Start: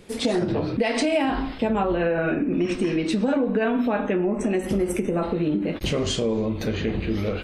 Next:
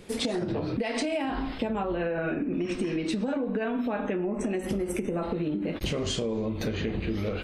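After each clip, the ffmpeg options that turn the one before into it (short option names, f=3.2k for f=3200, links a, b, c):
-af "acompressor=threshold=-26dB:ratio=6"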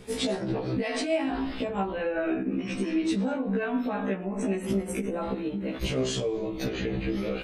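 -af "afftfilt=real='re*1.73*eq(mod(b,3),0)':imag='im*1.73*eq(mod(b,3),0)':win_size=2048:overlap=0.75,volume=3dB"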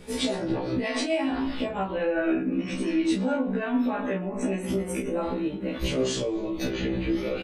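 -af "aecho=1:1:12|33:0.596|0.501"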